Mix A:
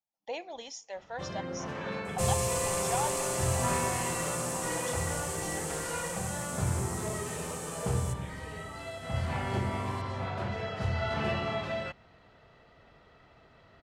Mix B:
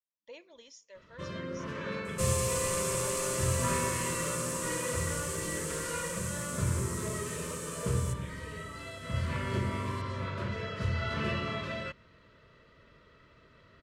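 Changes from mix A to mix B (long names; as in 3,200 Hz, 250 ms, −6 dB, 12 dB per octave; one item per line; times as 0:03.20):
speech −10.0 dB
master: add Butterworth band-reject 770 Hz, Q 2.3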